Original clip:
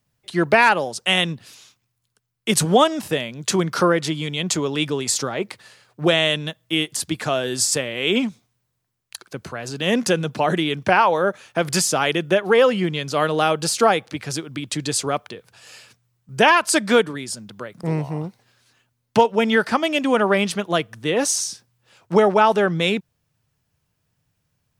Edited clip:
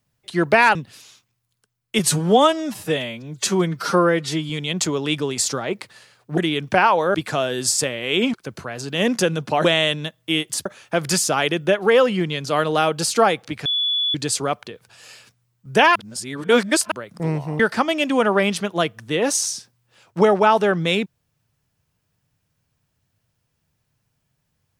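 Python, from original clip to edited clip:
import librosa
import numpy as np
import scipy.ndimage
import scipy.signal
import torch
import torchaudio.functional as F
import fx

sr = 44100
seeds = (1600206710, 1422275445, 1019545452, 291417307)

y = fx.edit(x, sr, fx.cut(start_s=0.75, length_s=0.53),
    fx.stretch_span(start_s=2.52, length_s=1.67, factor=1.5),
    fx.swap(start_s=6.07, length_s=1.01, other_s=10.52, other_length_s=0.77),
    fx.cut(start_s=8.27, length_s=0.94),
    fx.bleep(start_s=14.29, length_s=0.49, hz=3430.0, db=-18.0),
    fx.reverse_span(start_s=16.59, length_s=0.96),
    fx.cut(start_s=18.23, length_s=1.31), tone=tone)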